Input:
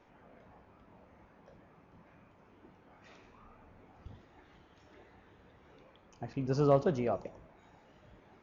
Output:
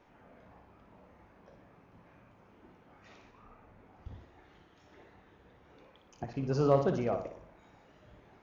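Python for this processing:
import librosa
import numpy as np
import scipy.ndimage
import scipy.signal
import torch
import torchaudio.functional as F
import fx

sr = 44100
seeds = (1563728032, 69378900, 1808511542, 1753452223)

y = fx.room_flutter(x, sr, wall_m=10.1, rt60_s=0.48)
y = fx.band_widen(y, sr, depth_pct=40, at=(3.31, 6.24))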